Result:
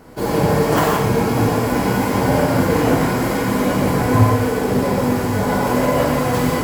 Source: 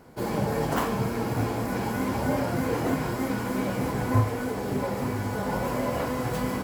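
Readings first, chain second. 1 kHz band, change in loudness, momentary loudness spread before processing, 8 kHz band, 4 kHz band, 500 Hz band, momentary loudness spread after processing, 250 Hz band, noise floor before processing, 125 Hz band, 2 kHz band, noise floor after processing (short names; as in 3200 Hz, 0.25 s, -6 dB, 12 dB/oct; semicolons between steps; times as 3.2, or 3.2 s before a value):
+10.5 dB, +10.5 dB, 4 LU, +11.5 dB, +11.5 dB, +11.5 dB, 3 LU, +10.5 dB, -32 dBFS, +10.0 dB, +10.5 dB, -21 dBFS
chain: non-linear reverb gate 0.2 s flat, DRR -2 dB; gain +7 dB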